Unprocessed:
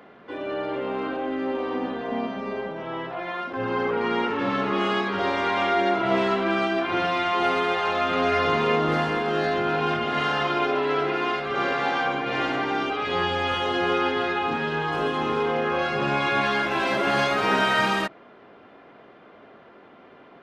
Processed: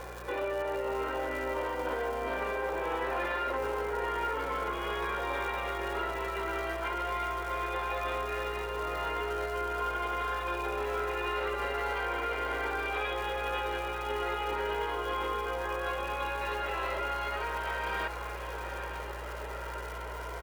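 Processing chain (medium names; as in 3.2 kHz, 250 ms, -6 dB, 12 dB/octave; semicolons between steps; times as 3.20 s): drifting ripple filter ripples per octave 1.8, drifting +0.38 Hz, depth 10 dB; compressor with a negative ratio -31 dBFS, ratio -1; one-sided clip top -25.5 dBFS; low-pass 2.6 kHz 12 dB/octave; crackle 350 per s -38 dBFS; high-pass 470 Hz 12 dB/octave; hum 60 Hz, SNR 16 dB; comb 2.1 ms, depth 43%; peak limiter -25 dBFS, peak gain reduction 8 dB; on a send: echo that smears into a reverb 936 ms, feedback 63%, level -8.5 dB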